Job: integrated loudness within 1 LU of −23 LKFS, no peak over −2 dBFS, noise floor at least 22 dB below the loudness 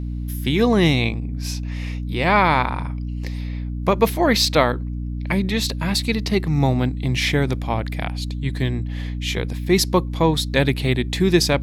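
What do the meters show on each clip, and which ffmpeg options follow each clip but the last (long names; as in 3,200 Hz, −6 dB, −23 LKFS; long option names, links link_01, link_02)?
mains hum 60 Hz; hum harmonics up to 300 Hz; level of the hum −24 dBFS; integrated loudness −21.0 LKFS; sample peak −3.5 dBFS; target loudness −23.0 LKFS
→ -af "bandreject=frequency=60:width_type=h:width=6,bandreject=frequency=120:width_type=h:width=6,bandreject=frequency=180:width_type=h:width=6,bandreject=frequency=240:width_type=h:width=6,bandreject=frequency=300:width_type=h:width=6"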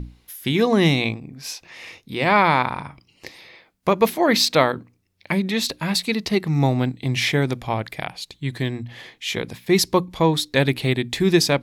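mains hum none found; integrated loudness −21.0 LKFS; sample peak −3.5 dBFS; target loudness −23.0 LKFS
→ -af "volume=-2dB"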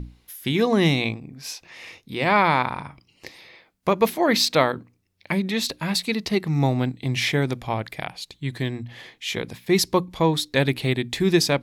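integrated loudness −23.0 LKFS; sample peak −5.5 dBFS; background noise floor −65 dBFS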